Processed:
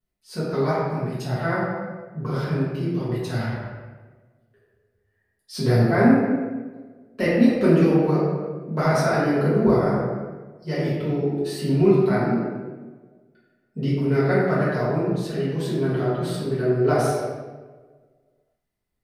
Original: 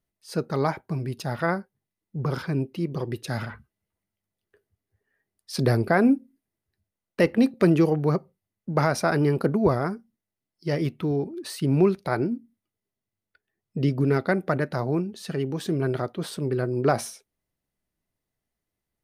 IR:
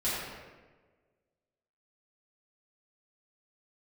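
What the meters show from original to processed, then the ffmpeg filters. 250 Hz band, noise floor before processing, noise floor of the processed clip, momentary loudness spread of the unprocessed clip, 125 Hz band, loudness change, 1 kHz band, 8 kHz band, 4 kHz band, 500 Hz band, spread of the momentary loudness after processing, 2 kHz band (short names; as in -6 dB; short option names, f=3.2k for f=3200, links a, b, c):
+3.5 dB, under -85 dBFS, -72 dBFS, 11 LU, +3.5 dB, +3.0 dB, +2.5 dB, -0.5 dB, +1.0 dB, +4.0 dB, 15 LU, +2.5 dB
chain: -filter_complex "[1:a]atrim=start_sample=2205[a];[0:a][a]afir=irnorm=-1:irlink=0,volume=-6dB"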